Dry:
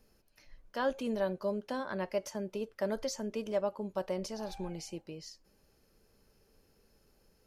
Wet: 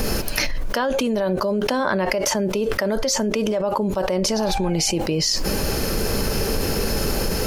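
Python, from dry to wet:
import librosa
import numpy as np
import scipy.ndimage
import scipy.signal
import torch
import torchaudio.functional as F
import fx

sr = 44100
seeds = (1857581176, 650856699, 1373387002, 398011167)

y = fx.env_flatten(x, sr, amount_pct=100)
y = y * librosa.db_to_amplitude(6.0)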